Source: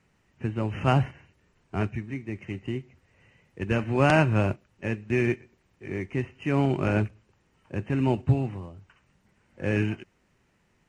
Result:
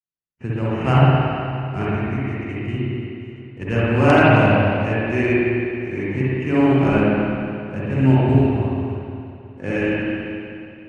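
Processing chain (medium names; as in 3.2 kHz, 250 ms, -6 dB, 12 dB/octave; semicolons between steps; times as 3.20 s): gate -59 dBFS, range -44 dB; spring tank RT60 2.6 s, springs 53/60 ms, chirp 30 ms, DRR -8.5 dB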